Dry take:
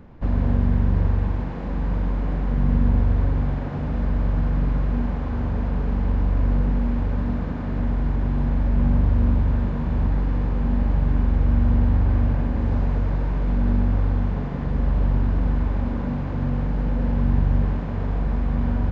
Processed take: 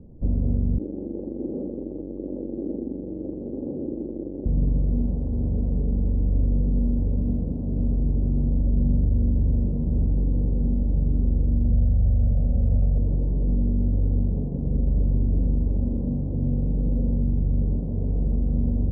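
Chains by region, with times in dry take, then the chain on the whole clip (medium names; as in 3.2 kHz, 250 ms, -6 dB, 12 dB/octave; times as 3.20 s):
0.78–4.46 s: one-bit comparator + band-pass filter 370 Hz, Q 2.2 + comb 3.6 ms, depth 42%
11.71–12.98 s: band-stop 1.6 kHz, Q 8.6 + comb 1.5 ms, depth 96%
whole clip: peak limiter -13.5 dBFS; inverse Chebyshev low-pass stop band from 2.3 kHz, stop band 70 dB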